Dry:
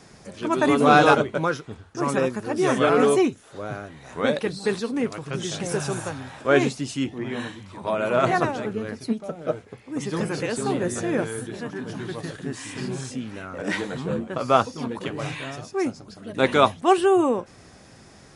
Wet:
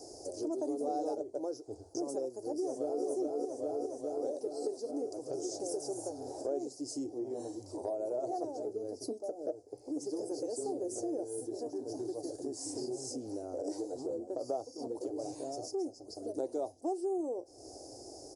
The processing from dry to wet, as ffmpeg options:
-filter_complex "[0:a]asplit=2[s0][s1];[s1]afade=t=in:st=2.4:d=0.01,afade=t=out:st=3.04:d=0.01,aecho=0:1:410|820|1230|1640|2050|2460|2870|3280|3690|4100|4510:0.944061|0.61364|0.398866|0.259263|0.168521|0.109538|0.0712|0.04628|0.030082|0.0195533|0.0127096[s2];[s0][s2]amix=inputs=2:normalize=0,firequalizer=gain_entry='entry(120,0);entry(170,-20);entry(300,15);entry(510,13);entry(730,13);entry(1100,-13);entry(1900,-24);entry(3400,-20);entry(4800,12)':delay=0.05:min_phase=1,acompressor=threshold=0.0398:ratio=4,volume=0.355"

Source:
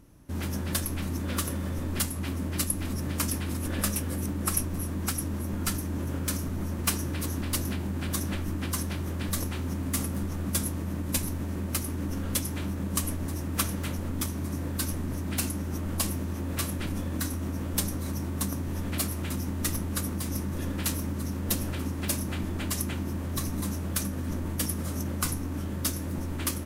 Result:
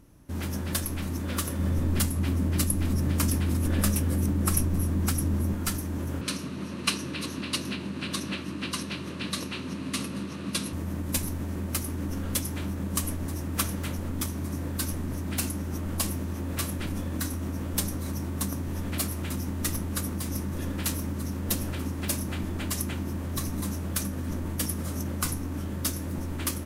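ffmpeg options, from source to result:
-filter_complex "[0:a]asettb=1/sr,asplit=3[s0][s1][s2];[s0]atrim=end=1.594[s3];[s1]atrim=start=1.59:end=5.53,asetpts=PTS-STARTPTS,afade=t=in:d=0.004:c=qsin,afade=t=out:st=3.936:d=0.004:c=qsin,lowshelf=f=320:g=7[s4];[s2]atrim=start=5.526[s5];[s3][s4]acrossfade=d=0.004:c1=hsin:c2=qsin[s6];[s6][s5]acrossfade=d=0.004:c1=qsin:c2=hsin,asettb=1/sr,asplit=3[s7][s8][s9];[s7]atrim=end=6.214[s10];[s8]atrim=start=6.21:end=10.73,asetpts=PTS-STARTPTS,afade=t=in:d=0.004:c=qsin,afade=t=out:st=4.516:d=0.004:c=qsin,highpass=f=120:w=0.5412,highpass=f=120:w=1.3066,equalizer=f=780:t=q:w=4:g=-7,equalizer=f=1100:t=q:w=4:g=3,equalizer=f=2700:t=q:w=4:g=9,equalizer=f=4100:t=q:w=4:g=9,equalizer=f=7400:t=q:w=4:g=-6,lowpass=f=9800:w=0.5412,lowpass=f=9800:w=1.3066[s11];[s9]atrim=start=10.726[s12];[s10][s11]acrossfade=d=0.004:c1=hsin:c2=qsin[s13];[s13][s12]acrossfade=d=0.004:c1=qsin:c2=hsin"

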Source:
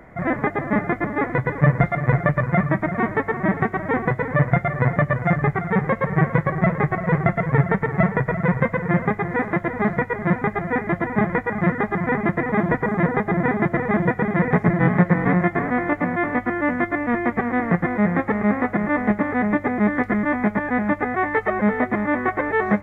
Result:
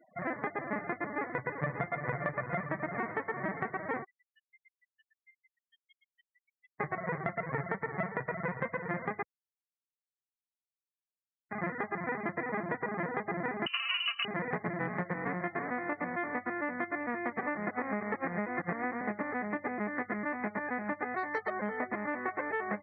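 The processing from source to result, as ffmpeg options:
-filter_complex "[0:a]asplit=2[s0][s1];[s1]afade=t=in:st=1.04:d=0.01,afade=t=out:st=2.05:d=0.01,aecho=0:1:580|1160|1740|2320|2900|3480|4060|4640|5220|5800|6380|6960:0.281838|0.211379|0.158534|0.118901|0.0891754|0.0668815|0.0501612|0.0376209|0.0282157|0.0211617|0.0158713|0.0119035[s2];[s0][s2]amix=inputs=2:normalize=0,asplit=3[s3][s4][s5];[s3]afade=t=out:st=4.03:d=0.02[s6];[s4]asuperpass=centerf=3100:order=4:qfactor=5.4,afade=t=in:st=4.03:d=0.02,afade=t=out:st=6.79:d=0.02[s7];[s5]afade=t=in:st=6.79:d=0.02[s8];[s6][s7][s8]amix=inputs=3:normalize=0,asettb=1/sr,asplit=3[s9][s10][s11];[s9]atrim=end=13.664[s12];[s10]atrim=start=13.66:end=14.25,asetpts=PTS-STARTPTS,afade=t=in:d=0.004:c=qsin,afade=t=out:st=0.586:d=0.004:c=qsin,lowpass=f=2600:t=q:w=0.5098,lowpass=f=2600:t=q:w=0.6013,lowpass=f=2600:t=q:w=0.9,lowpass=f=2600:t=q:w=2.563,afreqshift=-3100[s13];[s11]atrim=start=14.246[s14];[s12][s13]acrossfade=d=0.004:c1=hsin:c2=qsin[s15];[s15][s14]acrossfade=d=0.004:c1=qsin:c2=hsin,asettb=1/sr,asplit=3[s16][s17][s18];[s16]atrim=end=21.174[s19];[s17]atrim=start=21.17:end=21.78,asetpts=PTS-STARTPTS,afade=t=in:d=0.004:c=qsin,afade=t=out:st=0.606:d=0.004:c=qsin,adynamicsmooth=sensitivity=3.5:basefreq=2700[s20];[s18]atrim=start=21.776[s21];[s19][s20]acrossfade=d=0.004:c1=hsin:c2=qsin[s22];[s22][s21]acrossfade=d=0.004:c1=qsin:c2=hsin,asplit=5[s23][s24][s25][s26][s27];[s23]atrim=end=9.23,asetpts=PTS-STARTPTS,afade=t=out:st=9.226:d=0.004:c=hsin[s28];[s24]atrim=start=9.23:end=11.51,asetpts=PTS-STARTPTS,volume=0[s29];[s25]atrim=start=11.51:end=17.432,asetpts=PTS-STARTPTS,afade=t=in:d=0.004:c=hsin[s30];[s26]atrim=start=17.428:end=19.012,asetpts=PTS-STARTPTS,areverse[s31];[s27]atrim=start=19.008[s32];[s28][s29][s30]concat=n=3:v=0:a=1[s33];[s33][s31]acrossfade=d=0.004:c1=hsin:c2=hsin[s34];[s34][s32]acrossfade=d=0.004:c1=hsin:c2=hsin,highpass=f=420:p=1,afftfilt=real='re*gte(hypot(re,im),0.0141)':imag='im*gte(hypot(re,im),0.0141)':win_size=1024:overlap=0.75,acompressor=threshold=0.0794:ratio=6,volume=0.422"

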